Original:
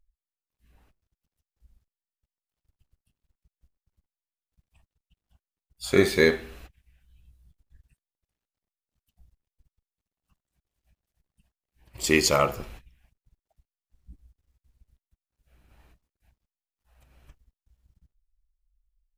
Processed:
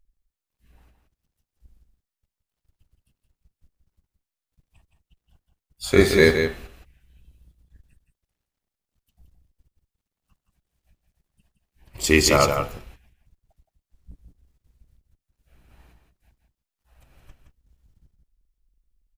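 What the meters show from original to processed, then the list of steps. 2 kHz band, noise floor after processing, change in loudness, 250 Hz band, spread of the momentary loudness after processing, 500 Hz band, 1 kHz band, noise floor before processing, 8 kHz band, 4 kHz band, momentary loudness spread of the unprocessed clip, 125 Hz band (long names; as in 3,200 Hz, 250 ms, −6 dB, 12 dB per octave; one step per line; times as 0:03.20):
+4.5 dB, below −85 dBFS, +4.0 dB, +4.5 dB, 13 LU, +4.5 dB, +4.5 dB, below −85 dBFS, +4.5 dB, +4.5 dB, 16 LU, +7.5 dB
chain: sub-octave generator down 2 octaves, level −5 dB
on a send: single-tap delay 169 ms −7 dB
on the sum: level +3.5 dB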